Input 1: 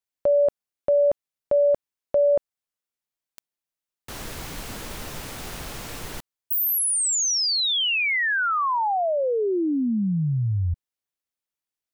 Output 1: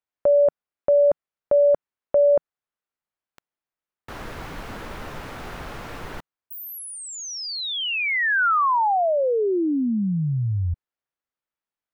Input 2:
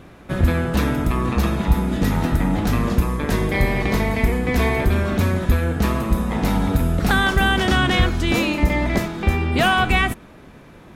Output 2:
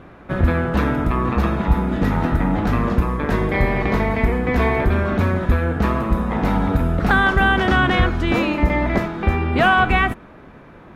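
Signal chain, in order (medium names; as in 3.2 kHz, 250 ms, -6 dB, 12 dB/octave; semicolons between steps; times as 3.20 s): FFT filter 160 Hz 0 dB, 1.4 kHz +4 dB, 8 kHz -13 dB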